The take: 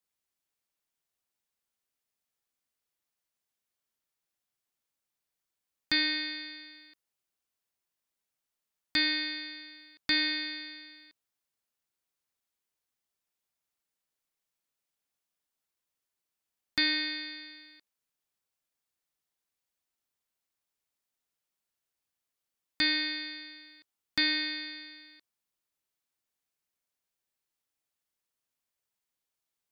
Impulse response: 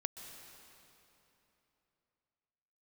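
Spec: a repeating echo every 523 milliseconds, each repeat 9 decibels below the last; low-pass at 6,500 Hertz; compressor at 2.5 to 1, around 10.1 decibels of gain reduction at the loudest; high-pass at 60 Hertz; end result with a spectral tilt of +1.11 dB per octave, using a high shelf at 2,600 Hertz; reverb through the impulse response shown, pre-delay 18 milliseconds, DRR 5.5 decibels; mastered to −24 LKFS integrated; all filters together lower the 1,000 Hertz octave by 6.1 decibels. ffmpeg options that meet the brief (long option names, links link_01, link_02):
-filter_complex "[0:a]highpass=60,lowpass=6500,equalizer=frequency=1000:width_type=o:gain=-6.5,highshelf=frequency=2600:gain=-5,acompressor=threshold=-42dB:ratio=2.5,aecho=1:1:523|1046|1569|2092:0.355|0.124|0.0435|0.0152,asplit=2[link_01][link_02];[1:a]atrim=start_sample=2205,adelay=18[link_03];[link_02][link_03]afir=irnorm=-1:irlink=0,volume=-4.5dB[link_04];[link_01][link_04]amix=inputs=2:normalize=0,volume=17.5dB"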